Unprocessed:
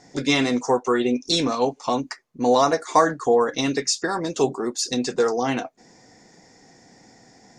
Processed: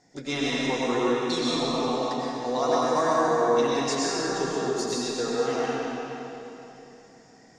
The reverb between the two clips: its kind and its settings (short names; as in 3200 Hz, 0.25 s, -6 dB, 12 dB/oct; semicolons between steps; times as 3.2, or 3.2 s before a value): digital reverb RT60 3.3 s, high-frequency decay 0.85×, pre-delay 65 ms, DRR -7 dB; gain -11 dB